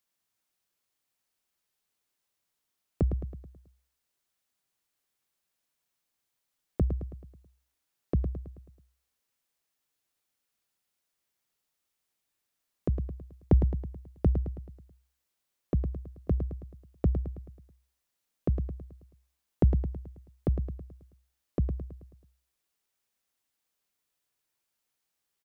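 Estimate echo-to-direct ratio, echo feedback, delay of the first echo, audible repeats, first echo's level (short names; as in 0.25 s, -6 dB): -7.0 dB, 50%, 0.108 s, 5, -8.0 dB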